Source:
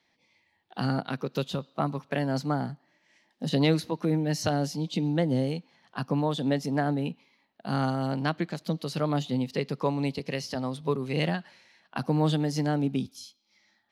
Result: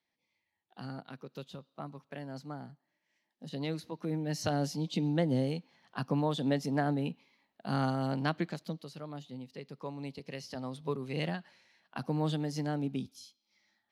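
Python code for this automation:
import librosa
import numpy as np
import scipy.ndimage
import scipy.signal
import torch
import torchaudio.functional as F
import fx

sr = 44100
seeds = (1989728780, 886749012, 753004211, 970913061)

y = fx.gain(x, sr, db=fx.line((3.5, -14.5), (4.63, -3.5), (8.49, -3.5), (8.99, -16.0), (9.56, -16.0), (10.78, -7.0)))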